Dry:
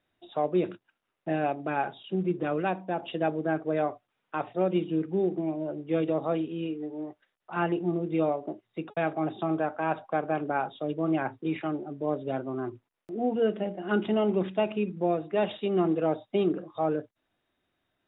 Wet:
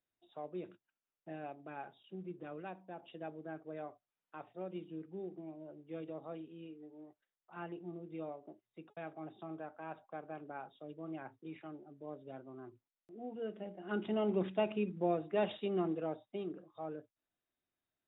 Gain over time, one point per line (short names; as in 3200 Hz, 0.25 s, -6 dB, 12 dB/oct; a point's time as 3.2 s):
13.29 s -17.5 dB
14.4 s -6.5 dB
15.53 s -6.5 dB
16.43 s -16 dB